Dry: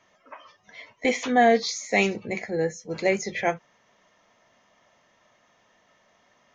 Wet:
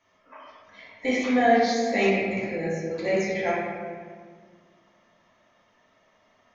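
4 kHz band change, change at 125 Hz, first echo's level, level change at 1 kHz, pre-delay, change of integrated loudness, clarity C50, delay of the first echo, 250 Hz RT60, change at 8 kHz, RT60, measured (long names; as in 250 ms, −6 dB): −2.5 dB, +1.0 dB, no echo audible, −0.5 dB, 3 ms, 0.0 dB, −1.5 dB, no echo audible, 2.5 s, can't be measured, 1.7 s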